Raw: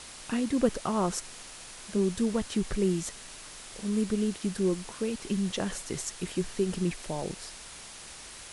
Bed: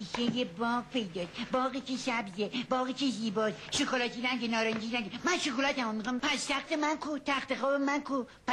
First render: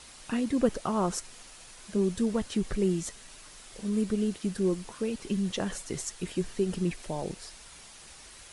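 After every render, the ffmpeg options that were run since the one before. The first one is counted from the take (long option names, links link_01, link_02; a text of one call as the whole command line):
ffmpeg -i in.wav -af "afftdn=noise_reduction=6:noise_floor=-46" out.wav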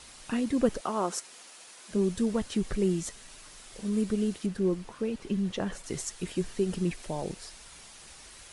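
ffmpeg -i in.wav -filter_complex "[0:a]asettb=1/sr,asplit=3[link_01][link_02][link_03];[link_01]atrim=end=0.814[link_04];[link_02]atrim=start=0.81:end=1.91,asetpts=PTS-STARTPTS,afade=type=in:duration=0.004:curve=qsin,afade=type=out:start_time=1.096:duration=0.004:curve=qsin,highpass=290[link_05];[link_03]atrim=start=1.906[link_06];[link_04][link_05]acrossfade=duration=0.004:curve1=hsin:curve2=qsin[link_07];[link_07][link_06]acrossfade=duration=0.004:curve1=qsin:curve2=hsin,asettb=1/sr,asplit=3[link_08][link_09][link_10];[link_08]atrim=end=4.464[link_11];[link_09]atrim=start=4.46:end=5.84,asetpts=PTS-STARTPTS,afade=type=in:duration=0.004:curve=qsin,afade=type=out:start_time=1.376:duration=0.004:curve=qsin,highshelf=frequency=4200:gain=-10[link_12];[link_10]atrim=start=5.836[link_13];[link_11][link_12]acrossfade=duration=0.004:curve1=hsin:curve2=qsin[link_14];[link_14][link_13]acrossfade=duration=0.004:curve1=qsin:curve2=hsin" out.wav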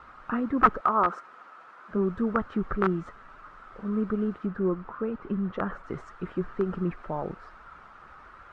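ffmpeg -i in.wav -af "aeval=exprs='(mod(7.5*val(0)+1,2)-1)/7.5':channel_layout=same,lowpass=frequency=1300:width_type=q:width=6.3" out.wav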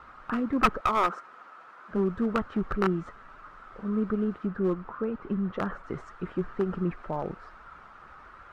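ffmpeg -i in.wav -af "aeval=exprs='clip(val(0),-1,0.0708)':channel_layout=same" out.wav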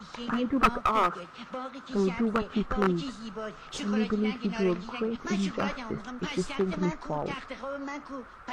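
ffmpeg -i in.wav -i bed.wav -filter_complex "[1:a]volume=-7dB[link_01];[0:a][link_01]amix=inputs=2:normalize=0" out.wav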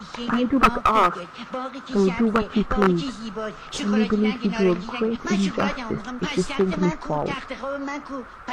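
ffmpeg -i in.wav -af "volume=7dB,alimiter=limit=-1dB:level=0:latency=1" out.wav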